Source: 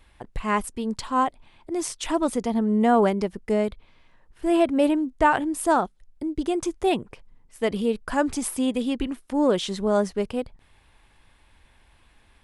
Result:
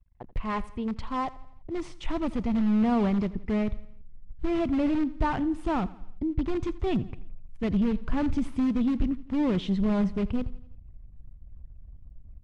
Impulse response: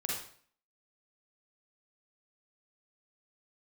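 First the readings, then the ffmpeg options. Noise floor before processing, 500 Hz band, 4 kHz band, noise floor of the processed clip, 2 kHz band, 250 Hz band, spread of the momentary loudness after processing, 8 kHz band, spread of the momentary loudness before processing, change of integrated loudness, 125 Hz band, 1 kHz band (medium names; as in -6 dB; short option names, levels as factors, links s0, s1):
-59 dBFS, -9.5 dB, -9.0 dB, -49 dBFS, -9.0 dB, -1.0 dB, 11 LU, under -20 dB, 10 LU, -4.0 dB, +4.0 dB, -9.0 dB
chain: -filter_complex "[0:a]asplit=2[s0][s1];[s1]aeval=exprs='(mod(10.6*val(0)+1,2)-1)/10.6':c=same,volume=0.501[s2];[s0][s2]amix=inputs=2:normalize=0,asubboost=boost=7:cutoff=190,acrusher=bits=7:mix=0:aa=0.000001,anlmdn=0.398,equalizer=f=1600:t=o:w=0.3:g=-5.5,asoftclip=type=tanh:threshold=0.335,lowpass=2600,aecho=1:1:84|168|252|336:0.112|0.0561|0.0281|0.014,volume=0.473" -ar 24000 -c:a aac -b:a 64k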